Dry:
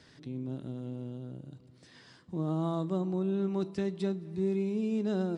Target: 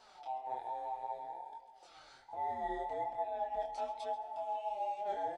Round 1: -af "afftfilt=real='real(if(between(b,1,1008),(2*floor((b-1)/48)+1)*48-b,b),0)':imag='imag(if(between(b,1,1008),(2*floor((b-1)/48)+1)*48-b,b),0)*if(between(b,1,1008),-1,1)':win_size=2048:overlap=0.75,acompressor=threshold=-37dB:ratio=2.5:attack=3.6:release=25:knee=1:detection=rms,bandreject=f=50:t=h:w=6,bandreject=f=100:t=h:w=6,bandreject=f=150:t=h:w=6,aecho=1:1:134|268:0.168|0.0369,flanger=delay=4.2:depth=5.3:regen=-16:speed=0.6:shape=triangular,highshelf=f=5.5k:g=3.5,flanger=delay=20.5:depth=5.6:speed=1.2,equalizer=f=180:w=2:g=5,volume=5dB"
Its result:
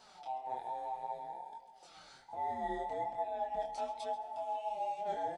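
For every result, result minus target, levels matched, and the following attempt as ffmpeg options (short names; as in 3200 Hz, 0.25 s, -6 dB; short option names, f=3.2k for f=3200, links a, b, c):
8000 Hz band +4.5 dB; 250 Hz band +2.5 dB
-af "afftfilt=real='real(if(between(b,1,1008),(2*floor((b-1)/48)+1)*48-b,b),0)':imag='imag(if(between(b,1,1008),(2*floor((b-1)/48)+1)*48-b,b),0)*if(between(b,1,1008),-1,1)':win_size=2048:overlap=0.75,acompressor=threshold=-37dB:ratio=2.5:attack=3.6:release=25:knee=1:detection=rms,bandreject=f=50:t=h:w=6,bandreject=f=100:t=h:w=6,bandreject=f=150:t=h:w=6,aecho=1:1:134|268:0.168|0.0369,flanger=delay=4.2:depth=5.3:regen=-16:speed=0.6:shape=triangular,highshelf=f=5.5k:g=-4,flanger=delay=20.5:depth=5.6:speed=1.2,equalizer=f=180:w=2:g=5,volume=5dB"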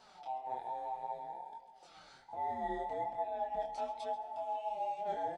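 250 Hz band +2.5 dB
-af "afftfilt=real='real(if(between(b,1,1008),(2*floor((b-1)/48)+1)*48-b,b),0)':imag='imag(if(between(b,1,1008),(2*floor((b-1)/48)+1)*48-b,b),0)*if(between(b,1,1008),-1,1)':win_size=2048:overlap=0.75,acompressor=threshold=-37dB:ratio=2.5:attack=3.6:release=25:knee=1:detection=rms,bandreject=f=50:t=h:w=6,bandreject=f=100:t=h:w=6,bandreject=f=150:t=h:w=6,aecho=1:1:134|268:0.168|0.0369,flanger=delay=4.2:depth=5.3:regen=-16:speed=0.6:shape=triangular,highshelf=f=5.5k:g=-4,flanger=delay=20.5:depth=5.6:speed=1.2,equalizer=f=180:w=2:g=-6,volume=5dB"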